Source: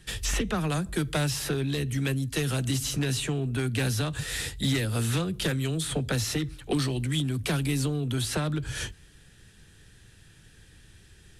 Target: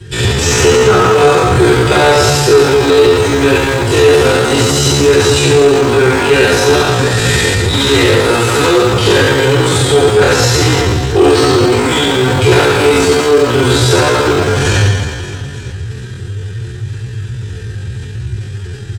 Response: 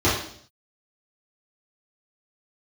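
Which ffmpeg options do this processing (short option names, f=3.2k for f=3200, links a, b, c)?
-filter_complex "[0:a]acrossover=split=320[a][b];[a]aeval=exprs='(mod(53.1*val(0)+1,2)-1)/53.1':c=same[c];[c][b]amix=inputs=2:normalize=0,aecho=1:1:50|120|218|355.2|547.3:0.631|0.398|0.251|0.158|0.1[d];[1:a]atrim=start_sample=2205,asetrate=52920,aresample=44100[e];[d][e]afir=irnorm=-1:irlink=0,atempo=0.6,asoftclip=type=tanh:threshold=-4.5dB,areverse,acompressor=mode=upward:threshold=-22dB:ratio=2.5,areverse,volume=3.5dB"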